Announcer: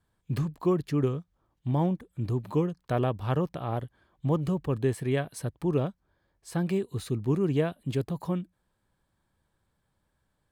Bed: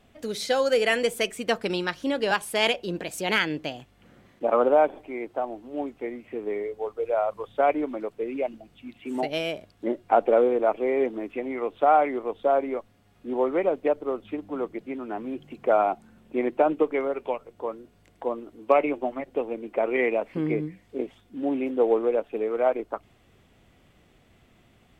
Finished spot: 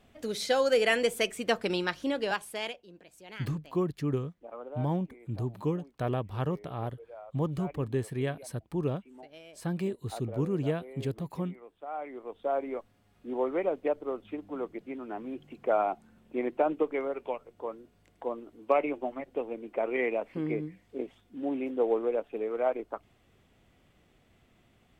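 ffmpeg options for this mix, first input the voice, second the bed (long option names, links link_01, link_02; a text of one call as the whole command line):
ffmpeg -i stem1.wav -i stem2.wav -filter_complex "[0:a]adelay=3100,volume=-4dB[link_01];[1:a]volume=14dB,afade=type=out:start_time=1.95:duration=0.88:silence=0.105925,afade=type=in:start_time=11.87:duration=0.92:silence=0.149624[link_02];[link_01][link_02]amix=inputs=2:normalize=0" out.wav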